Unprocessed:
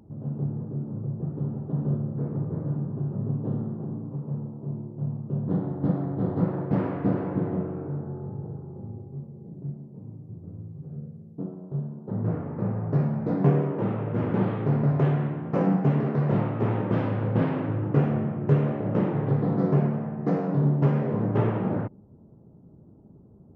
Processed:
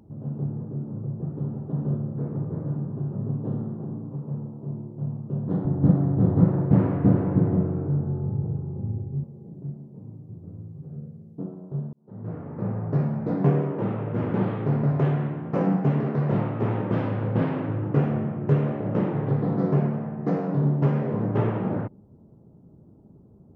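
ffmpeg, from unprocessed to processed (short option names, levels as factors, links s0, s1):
-filter_complex "[0:a]asettb=1/sr,asplit=3[s0][s1][s2];[s0]atrim=end=5.654[s3];[s1]atrim=start=5.65:end=9.24,asetpts=PTS-STARTPTS,afade=t=in:d=0.004:c=qsin,afade=t=out:st=3.586:d=0.004:c=qsin,aemphasis=mode=reproduction:type=bsi[s4];[s2]atrim=start=9.236[s5];[s3][s4]acrossfade=d=0.004:c1=hsin:c2=qsin[s6];[s6][s5]acrossfade=d=0.004:c1=qsin:c2=hsin,asplit=2[s7][s8];[s7]atrim=end=11.93,asetpts=PTS-STARTPTS,afade=t=out:st=11.926:d=0.004:c=hsin[s9];[s8]atrim=start=11.93,asetpts=PTS-STARTPTS,afade=t=in:d=0.79[s10];[s9][s10]concat=n=2:v=0:a=1"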